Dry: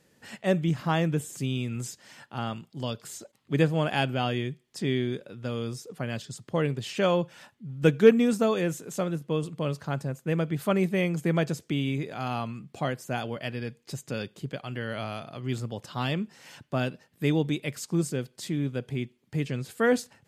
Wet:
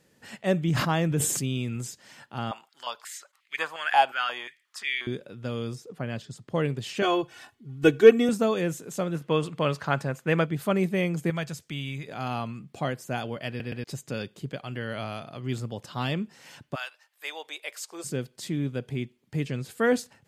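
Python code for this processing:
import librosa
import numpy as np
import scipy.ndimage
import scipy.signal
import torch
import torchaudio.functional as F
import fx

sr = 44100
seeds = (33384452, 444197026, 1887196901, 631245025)

y = fx.sustainer(x, sr, db_per_s=30.0, at=(0.65, 1.77))
y = fx.filter_held_highpass(y, sr, hz=5.6, low_hz=800.0, high_hz=2200.0, at=(2.51, 5.07))
y = fx.high_shelf(y, sr, hz=3800.0, db=-8.0, at=(5.75, 6.5))
y = fx.comb(y, sr, ms=2.7, depth=0.93, at=(7.02, 8.29))
y = fx.peak_eq(y, sr, hz=1600.0, db=10.0, octaves=3.0, at=(9.14, 10.45), fade=0.02)
y = fx.peak_eq(y, sr, hz=350.0, db=-12.0, octaves=2.0, at=(11.3, 12.08))
y = fx.highpass(y, sr, hz=fx.line((16.74, 1000.0), (18.04, 470.0)), slope=24, at=(16.74, 18.04), fade=0.02)
y = fx.edit(y, sr, fx.stutter_over(start_s=13.48, slice_s=0.12, count=3), tone=tone)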